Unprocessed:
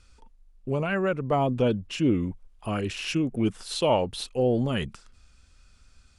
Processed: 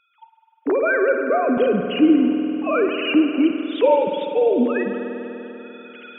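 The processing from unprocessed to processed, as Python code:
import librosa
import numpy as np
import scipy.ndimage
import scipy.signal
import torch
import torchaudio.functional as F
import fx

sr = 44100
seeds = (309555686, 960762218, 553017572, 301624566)

y = fx.sine_speech(x, sr)
y = fx.recorder_agc(y, sr, target_db=-18.5, rise_db_per_s=16.0, max_gain_db=30)
y = fx.rev_spring(y, sr, rt60_s=3.6, pass_ms=(49,), chirp_ms=60, drr_db=4.5)
y = y * librosa.db_to_amplitude(5.5)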